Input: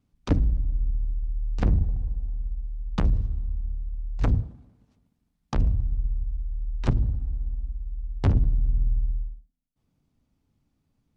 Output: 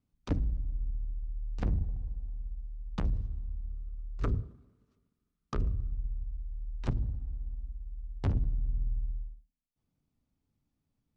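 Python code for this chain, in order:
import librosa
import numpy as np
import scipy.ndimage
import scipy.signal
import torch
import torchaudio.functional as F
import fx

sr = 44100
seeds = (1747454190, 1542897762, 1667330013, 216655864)

y = fx.graphic_eq_31(x, sr, hz=(400, 800, 1250), db=(11, -9, 11), at=(3.71, 5.91))
y = y * librosa.db_to_amplitude(-8.5)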